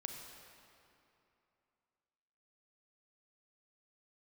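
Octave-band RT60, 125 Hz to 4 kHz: 2.8, 2.9, 2.8, 2.9, 2.5, 2.0 seconds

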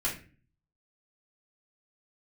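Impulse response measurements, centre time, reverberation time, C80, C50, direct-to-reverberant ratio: 25 ms, 0.40 s, 13.5 dB, 8.0 dB, −7.0 dB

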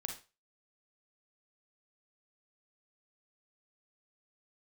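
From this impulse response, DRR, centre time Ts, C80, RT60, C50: 3.0 dB, 20 ms, 13.5 dB, 0.30 s, 6.5 dB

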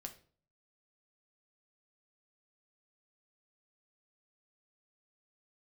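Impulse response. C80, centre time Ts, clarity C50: 18.0 dB, 9 ms, 13.0 dB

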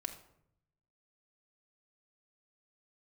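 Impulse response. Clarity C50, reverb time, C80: 10.5 dB, 0.70 s, 13.5 dB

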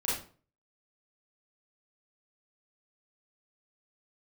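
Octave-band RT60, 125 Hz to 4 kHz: 0.50, 0.45, 0.45, 0.40, 0.35, 0.30 seconds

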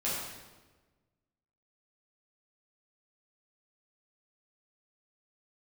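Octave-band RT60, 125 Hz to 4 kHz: 1.7, 1.5, 1.4, 1.2, 1.1, 1.0 seconds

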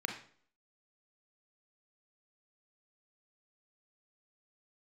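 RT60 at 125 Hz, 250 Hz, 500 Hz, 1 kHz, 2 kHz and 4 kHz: 0.50, 0.55, 0.55, 0.50, 0.45, 0.45 seconds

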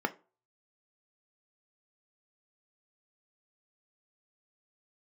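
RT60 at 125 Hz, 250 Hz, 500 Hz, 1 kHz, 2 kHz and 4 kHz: 0.35, 0.35, 0.40, 0.35, 0.25, 0.20 seconds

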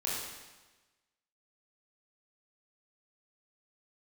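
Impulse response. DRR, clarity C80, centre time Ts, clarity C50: −6.5 dB, 2.0 dB, 84 ms, −0.5 dB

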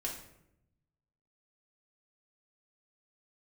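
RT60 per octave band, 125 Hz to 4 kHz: 1.5, 1.2, 0.90, 0.70, 0.65, 0.50 seconds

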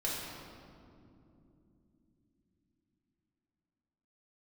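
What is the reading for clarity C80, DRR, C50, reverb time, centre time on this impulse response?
1.0 dB, −6.5 dB, −1.0 dB, 2.9 s, 122 ms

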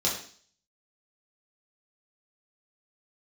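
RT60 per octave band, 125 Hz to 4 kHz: 0.50, 0.50, 0.50, 0.45, 0.50, 0.60 seconds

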